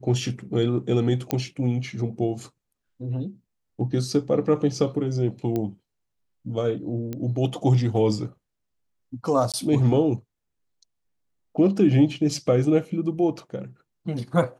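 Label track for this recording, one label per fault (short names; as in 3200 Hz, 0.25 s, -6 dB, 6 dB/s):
1.310000	1.310000	pop -9 dBFS
5.560000	5.560000	pop -15 dBFS
7.130000	7.130000	pop -18 dBFS
9.520000	9.540000	gap 17 ms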